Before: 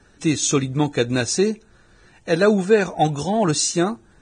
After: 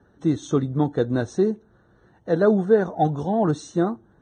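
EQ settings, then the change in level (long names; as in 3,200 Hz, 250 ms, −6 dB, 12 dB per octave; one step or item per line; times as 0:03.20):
moving average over 18 samples
high-pass filter 70 Hz
−1.0 dB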